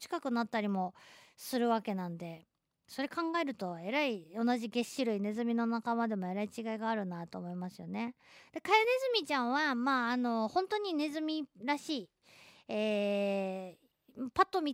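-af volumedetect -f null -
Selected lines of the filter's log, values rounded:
mean_volume: -34.7 dB
max_volume: -13.2 dB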